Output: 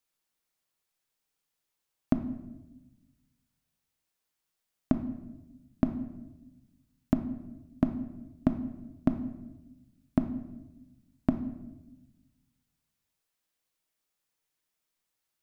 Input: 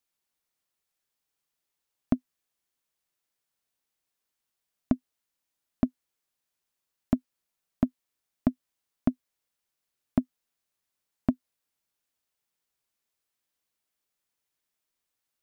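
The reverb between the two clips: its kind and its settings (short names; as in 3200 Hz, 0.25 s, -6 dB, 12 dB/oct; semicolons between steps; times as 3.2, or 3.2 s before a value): shoebox room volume 460 m³, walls mixed, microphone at 0.58 m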